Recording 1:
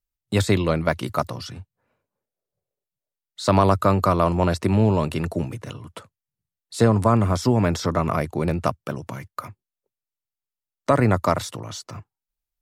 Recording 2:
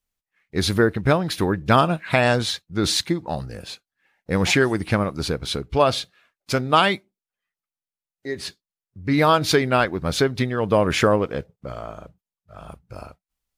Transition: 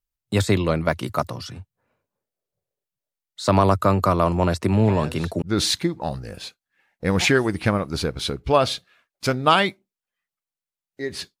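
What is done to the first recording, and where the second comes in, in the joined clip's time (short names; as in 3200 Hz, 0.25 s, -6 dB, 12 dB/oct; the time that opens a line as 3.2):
recording 1
4.76 add recording 2 from 2.02 s 0.66 s -18 dB
5.42 switch to recording 2 from 2.68 s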